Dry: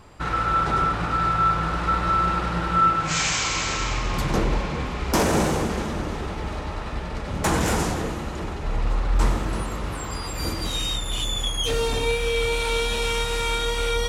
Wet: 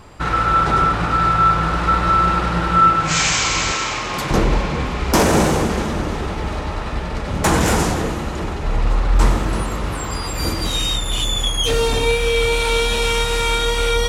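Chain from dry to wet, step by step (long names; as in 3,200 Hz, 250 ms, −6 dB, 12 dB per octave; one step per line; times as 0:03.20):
0:03.72–0:04.31: high-pass filter 330 Hz 6 dB per octave
level +6 dB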